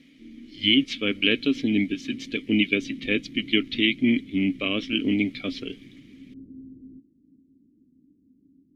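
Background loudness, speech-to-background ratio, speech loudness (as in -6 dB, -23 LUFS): -44.0 LUFS, 20.0 dB, -24.0 LUFS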